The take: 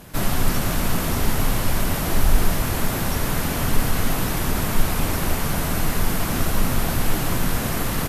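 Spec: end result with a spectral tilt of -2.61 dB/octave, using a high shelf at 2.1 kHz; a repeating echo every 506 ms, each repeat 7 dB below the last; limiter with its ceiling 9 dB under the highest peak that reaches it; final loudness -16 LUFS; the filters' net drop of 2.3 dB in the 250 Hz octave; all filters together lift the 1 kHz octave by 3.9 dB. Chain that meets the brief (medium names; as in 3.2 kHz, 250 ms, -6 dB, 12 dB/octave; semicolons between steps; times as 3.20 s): peaking EQ 250 Hz -3.5 dB; peaking EQ 1 kHz +3.5 dB; treble shelf 2.1 kHz +6.5 dB; peak limiter -11.5 dBFS; feedback delay 506 ms, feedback 45%, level -7 dB; trim +5 dB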